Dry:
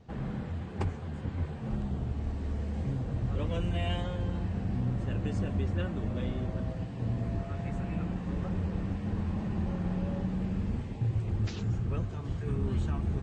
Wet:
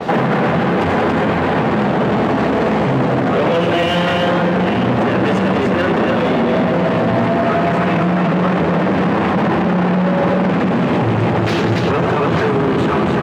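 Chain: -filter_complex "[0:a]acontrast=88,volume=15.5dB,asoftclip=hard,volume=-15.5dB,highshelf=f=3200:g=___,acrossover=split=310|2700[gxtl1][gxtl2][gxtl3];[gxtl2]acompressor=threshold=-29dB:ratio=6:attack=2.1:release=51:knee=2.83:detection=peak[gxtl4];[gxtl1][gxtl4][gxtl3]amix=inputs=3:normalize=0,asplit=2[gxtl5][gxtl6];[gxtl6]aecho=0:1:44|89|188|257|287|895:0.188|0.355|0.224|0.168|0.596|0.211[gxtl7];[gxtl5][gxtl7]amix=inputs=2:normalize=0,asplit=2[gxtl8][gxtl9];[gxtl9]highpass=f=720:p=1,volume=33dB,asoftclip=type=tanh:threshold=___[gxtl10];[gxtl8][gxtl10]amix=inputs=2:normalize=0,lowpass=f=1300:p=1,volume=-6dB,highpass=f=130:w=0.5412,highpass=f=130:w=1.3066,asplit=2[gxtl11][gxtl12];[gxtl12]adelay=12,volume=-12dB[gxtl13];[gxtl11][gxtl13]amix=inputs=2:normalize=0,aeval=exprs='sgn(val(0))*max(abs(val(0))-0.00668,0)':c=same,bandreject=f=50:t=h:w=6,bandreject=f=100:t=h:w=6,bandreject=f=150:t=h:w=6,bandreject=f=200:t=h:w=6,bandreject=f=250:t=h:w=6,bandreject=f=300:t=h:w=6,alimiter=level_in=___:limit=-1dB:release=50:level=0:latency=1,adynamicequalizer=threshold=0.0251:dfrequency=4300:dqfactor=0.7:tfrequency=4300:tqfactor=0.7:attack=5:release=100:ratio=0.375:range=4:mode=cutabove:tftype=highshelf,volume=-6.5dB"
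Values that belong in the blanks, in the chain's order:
2, -9dB, 18.5dB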